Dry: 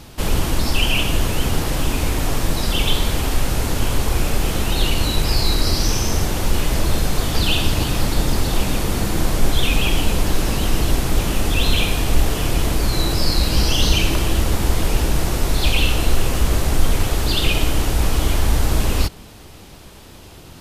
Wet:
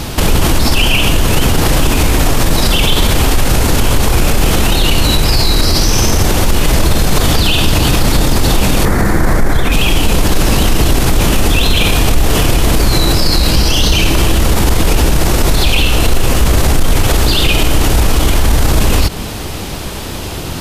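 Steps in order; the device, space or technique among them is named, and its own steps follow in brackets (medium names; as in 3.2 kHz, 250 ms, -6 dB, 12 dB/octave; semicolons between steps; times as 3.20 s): loud club master (compression 1.5:1, threshold -20 dBFS, peak gain reduction 5 dB; hard clipper -9.5 dBFS, distortion -37 dB; loudness maximiser +20 dB); 8.85–9.72 s: resonant high shelf 2.3 kHz -6.5 dB, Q 3; trim -1 dB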